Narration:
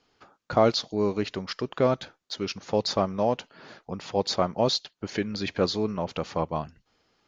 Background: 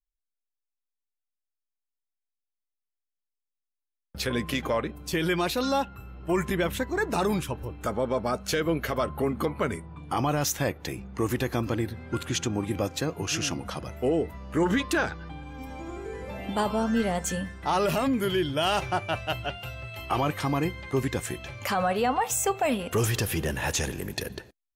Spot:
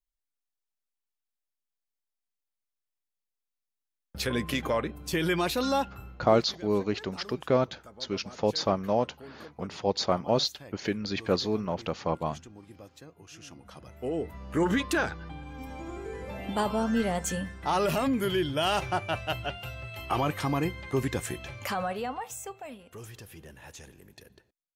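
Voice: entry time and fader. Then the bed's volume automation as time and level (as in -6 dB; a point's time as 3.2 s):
5.70 s, -1.5 dB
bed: 6.07 s -1 dB
6.45 s -20.5 dB
13.34 s -20.5 dB
14.41 s -1.5 dB
21.53 s -1.5 dB
22.84 s -19.5 dB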